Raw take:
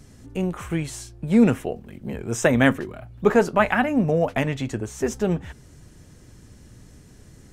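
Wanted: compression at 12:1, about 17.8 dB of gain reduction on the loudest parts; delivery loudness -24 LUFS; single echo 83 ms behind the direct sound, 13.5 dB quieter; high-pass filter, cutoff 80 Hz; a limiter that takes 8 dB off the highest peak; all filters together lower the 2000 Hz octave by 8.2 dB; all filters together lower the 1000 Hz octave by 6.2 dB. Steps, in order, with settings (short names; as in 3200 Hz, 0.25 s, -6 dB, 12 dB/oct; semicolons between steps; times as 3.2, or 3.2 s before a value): HPF 80 Hz; bell 1000 Hz -7 dB; bell 2000 Hz -8 dB; compressor 12:1, threshold -30 dBFS; limiter -27.5 dBFS; echo 83 ms -13.5 dB; gain +14 dB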